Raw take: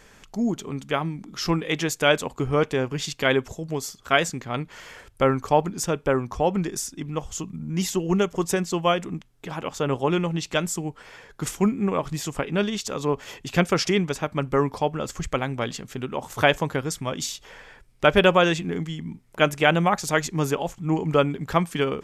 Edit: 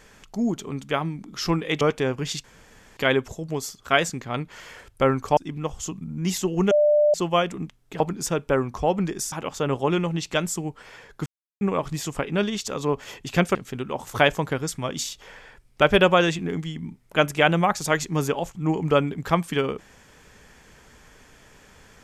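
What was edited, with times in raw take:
1.81–2.54 cut
3.17 insert room tone 0.53 s
5.57–6.89 move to 9.52
8.23–8.66 bleep 595 Hz -14.5 dBFS
11.46–11.81 mute
13.75–15.78 cut

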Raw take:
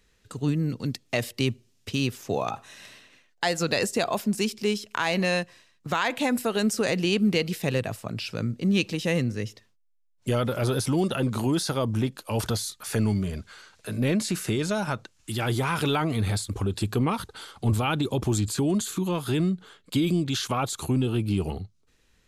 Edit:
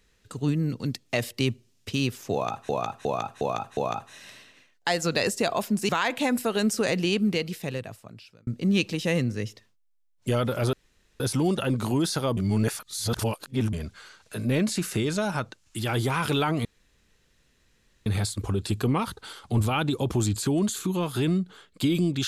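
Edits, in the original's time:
2.33–2.69 loop, 5 plays
4.45–5.89 cut
6.97–8.47 fade out
10.73 insert room tone 0.47 s
11.9–13.26 reverse
16.18 insert room tone 1.41 s

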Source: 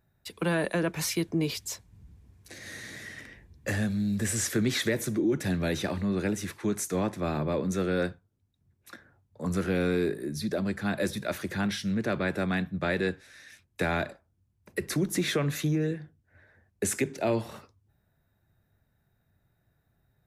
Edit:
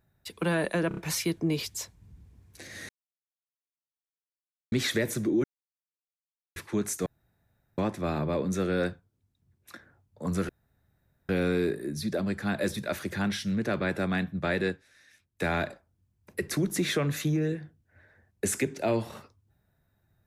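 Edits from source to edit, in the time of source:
0.88 stutter 0.03 s, 4 plays
2.8–4.63 mute
5.35–6.47 mute
6.97 insert room tone 0.72 s
9.68 insert room tone 0.80 s
13.06–13.85 dip -8.5 dB, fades 0.12 s

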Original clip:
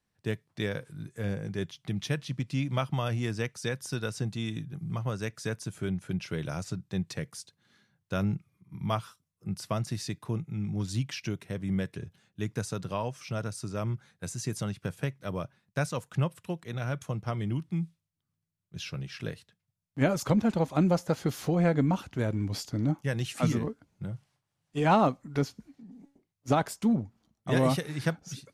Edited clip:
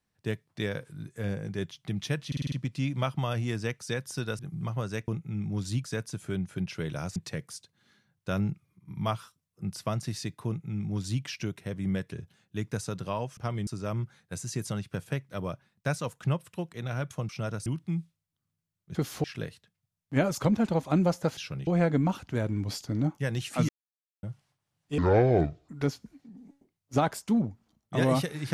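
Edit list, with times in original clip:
2.27 stutter 0.05 s, 6 plays
4.14–4.68 cut
6.69–7 cut
10.31–11.07 copy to 5.37
13.21–13.58 swap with 17.2–17.5
18.79–19.09 swap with 21.22–21.51
23.53–24.07 mute
24.82–25.23 speed 58%

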